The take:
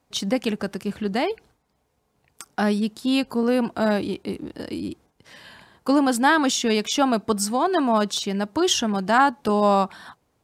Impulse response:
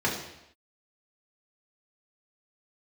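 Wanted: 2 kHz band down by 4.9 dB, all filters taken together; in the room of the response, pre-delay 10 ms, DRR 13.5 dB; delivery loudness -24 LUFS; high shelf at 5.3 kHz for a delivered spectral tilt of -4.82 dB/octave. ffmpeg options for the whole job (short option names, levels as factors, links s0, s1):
-filter_complex "[0:a]equalizer=f=2000:t=o:g=-6,highshelf=f=5300:g=-7,asplit=2[s0][s1];[1:a]atrim=start_sample=2205,adelay=10[s2];[s1][s2]afir=irnorm=-1:irlink=0,volume=0.0531[s3];[s0][s3]amix=inputs=2:normalize=0,volume=0.891"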